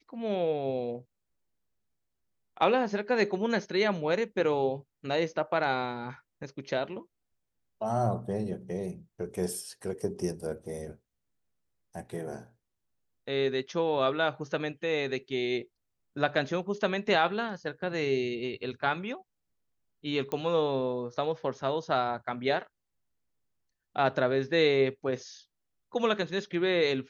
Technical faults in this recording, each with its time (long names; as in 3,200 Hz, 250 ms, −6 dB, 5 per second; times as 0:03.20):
0:20.32: click −20 dBFS